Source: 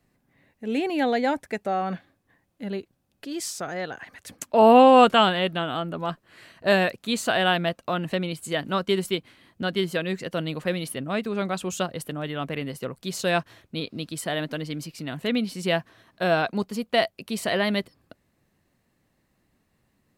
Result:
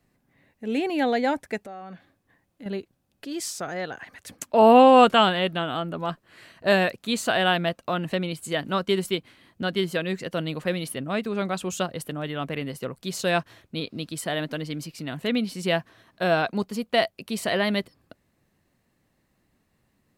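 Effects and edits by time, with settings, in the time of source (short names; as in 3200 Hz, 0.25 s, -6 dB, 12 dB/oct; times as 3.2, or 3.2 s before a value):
1.65–2.66 compressor 3:1, threshold -41 dBFS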